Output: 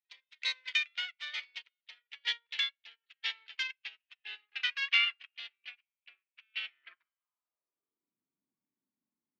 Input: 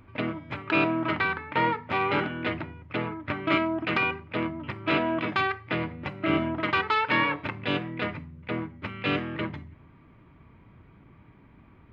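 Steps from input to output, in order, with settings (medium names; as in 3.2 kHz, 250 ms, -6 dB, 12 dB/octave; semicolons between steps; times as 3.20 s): gliding tape speed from 163% -> 91%; high-pass sweep 2.4 kHz -> 240 Hz, 6.69–8.20 s; feedback comb 200 Hz, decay 1.3 s, mix 40%; upward expansion 2.5:1, over -48 dBFS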